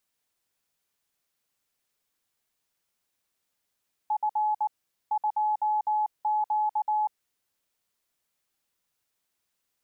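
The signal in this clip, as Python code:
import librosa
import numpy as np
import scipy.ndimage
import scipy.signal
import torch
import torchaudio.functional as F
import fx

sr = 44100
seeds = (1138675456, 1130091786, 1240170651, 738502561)

y = fx.morse(sr, text='F 2Q', wpm=19, hz=851.0, level_db=-22.5)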